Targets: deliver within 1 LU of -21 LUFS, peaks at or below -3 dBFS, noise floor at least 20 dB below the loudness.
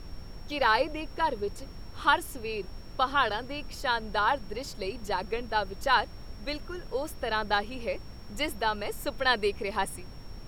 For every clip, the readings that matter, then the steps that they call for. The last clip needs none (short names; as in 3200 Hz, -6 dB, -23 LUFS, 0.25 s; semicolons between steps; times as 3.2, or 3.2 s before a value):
steady tone 5500 Hz; tone level -56 dBFS; noise floor -44 dBFS; noise floor target -50 dBFS; loudness -30.0 LUFS; peak -10.0 dBFS; loudness target -21.0 LUFS
-> notch 5500 Hz, Q 30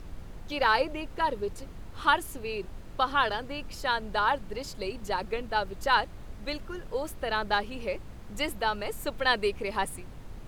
steady tone none; noise floor -44 dBFS; noise floor target -50 dBFS
-> noise print and reduce 6 dB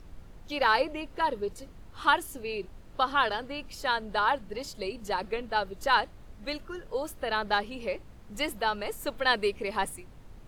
noise floor -50 dBFS; loudness -30.0 LUFS; peak -10.0 dBFS; loudness target -21.0 LUFS
-> gain +9 dB; limiter -3 dBFS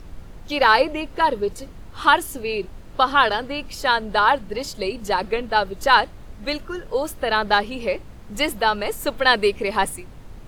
loudness -21.0 LUFS; peak -3.0 dBFS; noise floor -41 dBFS